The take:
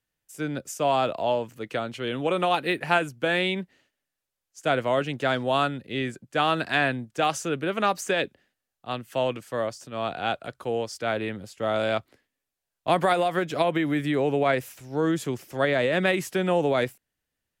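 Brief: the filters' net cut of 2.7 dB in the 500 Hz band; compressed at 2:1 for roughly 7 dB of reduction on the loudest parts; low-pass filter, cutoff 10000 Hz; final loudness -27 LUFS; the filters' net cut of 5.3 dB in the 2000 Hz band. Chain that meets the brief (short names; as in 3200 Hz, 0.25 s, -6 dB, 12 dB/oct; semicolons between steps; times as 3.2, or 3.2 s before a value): LPF 10000 Hz; bell 500 Hz -3 dB; bell 2000 Hz -7 dB; compressor 2:1, threshold -33 dBFS; gain +7.5 dB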